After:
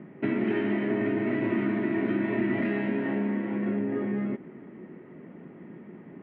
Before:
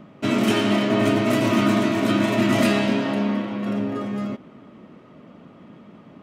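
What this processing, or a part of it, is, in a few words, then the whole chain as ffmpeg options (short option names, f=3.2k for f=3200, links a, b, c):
bass amplifier: -af "acompressor=threshold=-25dB:ratio=4,highpass=84,equalizer=f=100:t=q:w=4:g=-5,equalizer=f=170:t=q:w=4:g=3,equalizer=f=370:t=q:w=4:g=9,equalizer=f=610:t=q:w=4:g=-6,equalizer=f=1.2k:t=q:w=4:g=-10,equalizer=f=1.9k:t=q:w=4:g=7,lowpass=f=2.2k:w=0.5412,lowpass=f=2.2k:w=1.3066,volume=-1.5dB"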